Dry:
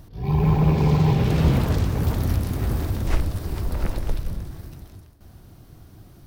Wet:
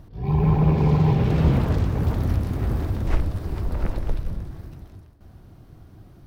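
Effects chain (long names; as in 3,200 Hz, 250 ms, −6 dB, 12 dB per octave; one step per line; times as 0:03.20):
high-shelf EQ 3,700 Hz −11.5 dB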